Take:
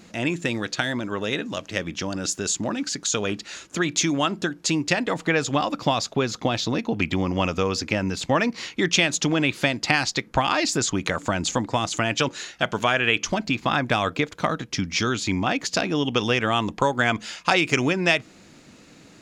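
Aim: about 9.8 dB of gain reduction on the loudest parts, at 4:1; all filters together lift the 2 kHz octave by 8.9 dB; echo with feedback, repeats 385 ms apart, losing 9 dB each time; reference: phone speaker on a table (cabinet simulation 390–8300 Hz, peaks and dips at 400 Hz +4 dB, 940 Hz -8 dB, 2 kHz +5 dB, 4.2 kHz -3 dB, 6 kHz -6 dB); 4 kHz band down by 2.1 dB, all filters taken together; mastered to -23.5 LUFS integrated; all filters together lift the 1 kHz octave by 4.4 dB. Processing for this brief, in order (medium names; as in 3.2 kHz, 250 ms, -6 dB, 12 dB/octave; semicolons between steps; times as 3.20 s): peaking EQ 1 kHz +7.5 dB; peaking EQ 2 kHz +8 dB; peaking EQ 4 kHz -5.5 dB; compression 4:1, threshold -22 dBFS; cabinet simulation 390–8300 Hz, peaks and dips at 400 Hz +4 dB, 940 Hz -8 dB, 2 kHz +5 dB, 4.2 kHz -3 dB, 6 kHz -6 dB; feedback delay 385 ms, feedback 35%, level -9 dB; trim +2.5 dB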